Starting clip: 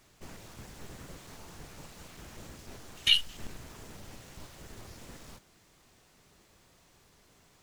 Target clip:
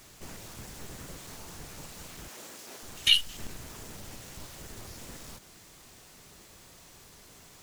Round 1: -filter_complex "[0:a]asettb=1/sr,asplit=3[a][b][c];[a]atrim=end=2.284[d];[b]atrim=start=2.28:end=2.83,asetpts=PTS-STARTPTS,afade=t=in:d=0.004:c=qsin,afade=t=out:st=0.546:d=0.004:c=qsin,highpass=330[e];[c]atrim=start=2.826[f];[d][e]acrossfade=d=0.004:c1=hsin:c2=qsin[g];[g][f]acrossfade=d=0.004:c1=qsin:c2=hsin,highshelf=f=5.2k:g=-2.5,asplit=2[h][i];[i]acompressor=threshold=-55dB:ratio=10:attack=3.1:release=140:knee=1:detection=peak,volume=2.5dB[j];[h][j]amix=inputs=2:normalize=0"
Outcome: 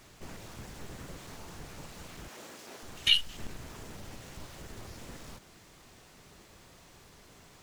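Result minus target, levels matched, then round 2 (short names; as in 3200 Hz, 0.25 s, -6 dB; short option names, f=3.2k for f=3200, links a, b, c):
8000 Hz band -4.0 dB
-filter_complex "[0:a]asettb=1/sr,asplit=3[a][b][c];[a]atrim=end=2.284[d];[b]atrim=start=2.28:end=2.83,asetpts=PTS-STARTPTS,afade=t=in:d=0.004:c=qsin,afade=t=out:st=0.546:d=0.004:c=qsin,highpass=330[e];[c]atrim=start=2.826[f];[d][e]acrossfade=d=0.004:c1=hsin:c2=qsin[g];[g][f]acrossfade=d=0.004:c1=qsin:c2=hsin,highshelf=f=5.2k:g=7,asplit=2[h][i];[i]acompressor=threshold=-55dB:ratio=10:attack=3.1:release=140:knee=1:detection=peak,volume=2.5dB[j];[h][j]amix=inputs=2:normalize=0"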